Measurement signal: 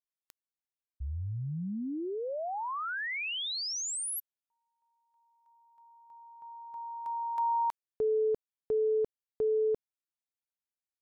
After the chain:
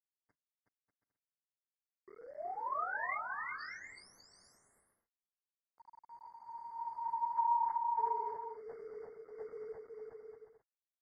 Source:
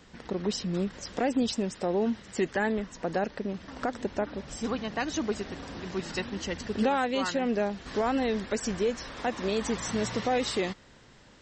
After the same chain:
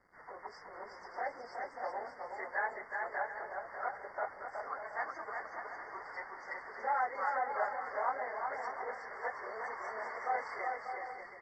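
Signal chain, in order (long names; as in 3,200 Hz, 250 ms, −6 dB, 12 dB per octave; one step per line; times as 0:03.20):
random phases in long frames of 50 ms
high-pass filter 750 Hz 24 dB per octave
high-shelf EQ 7,300 Hz −5 dB
bit reduction 9 bits
linear-phase brick-wall band-stop 2,200–4,500 Hz
high-frequency loss of the air 470 metres
on a send: bouncing-ball delay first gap 370 ms, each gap 0.6×, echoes 5
on the sum: AAC 32 kbit/s 24,000 Hz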